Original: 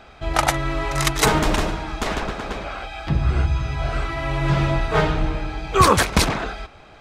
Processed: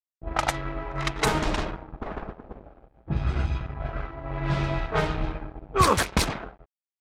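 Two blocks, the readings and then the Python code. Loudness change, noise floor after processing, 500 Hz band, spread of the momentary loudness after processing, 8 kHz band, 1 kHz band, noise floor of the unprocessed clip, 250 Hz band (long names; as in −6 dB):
−6.0 dB, below −85 dBFS, −6.5 dB, 15 LU, −8.0 dB, −6.5 dB, −46 dBFS, −6.5 dB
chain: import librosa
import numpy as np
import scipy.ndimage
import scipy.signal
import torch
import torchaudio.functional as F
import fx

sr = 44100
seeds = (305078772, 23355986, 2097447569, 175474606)

y = np.sign(x) * np.maximum(np.abs(x) - 10.0 ** (-29.5 / 20.0), 0.0)
y = fx.env_lowpass(y, sr, base_hz=370.0, full_db=-14.0)
y = F.gain(torch.from_numpy(y), -4.5).numpy()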